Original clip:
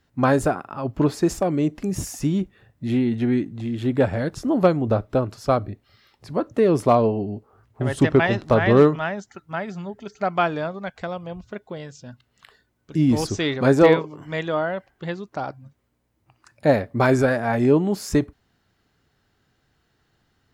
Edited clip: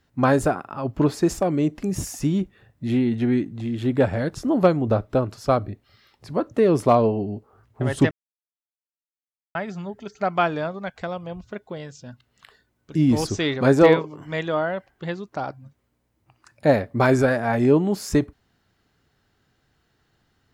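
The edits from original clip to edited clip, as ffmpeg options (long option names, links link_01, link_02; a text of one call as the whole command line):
ffmpeg -i in.wav -filter_complex "[0:a]asplit=3[link_01][link_02][link_03];[link_01]atrim=end=8.11,asetpts=PTS-STARTPTS,afade=type=out:start_time=8.106:duration=0.004:curve=hsin[link_04];[link_02]atrim=start=8.11:end=9.55,asetpts=PTS-STARTPTS,volume=0[link_05];[link_03]atrim=start=9.55,asetpts=PTS-STARTPTS,afade=type=in:duration=0.004:curve=hsin[link_06];[link_04][link_05][link_06]concat=n=3:v=0:a=1" out.wav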